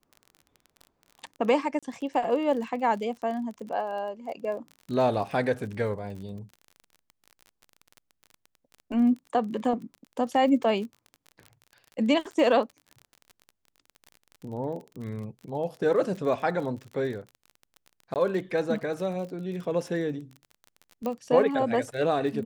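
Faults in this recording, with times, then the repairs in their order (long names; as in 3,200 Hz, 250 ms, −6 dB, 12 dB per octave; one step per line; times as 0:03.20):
surface crackle 33 per second −36 dBFS
0:01.79–0:01.83: drop-out 36 ms
0:18.14–0:18.16: drop-out 18 ms
0:21.06: click −19 dBFS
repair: click removal
repair the gap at 0:01.79, 36 ms
repair the gap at 0:18.14, 18 ms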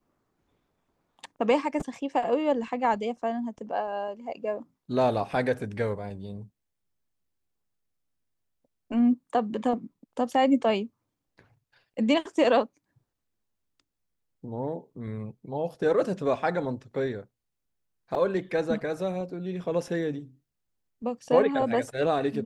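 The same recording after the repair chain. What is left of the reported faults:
none of them is left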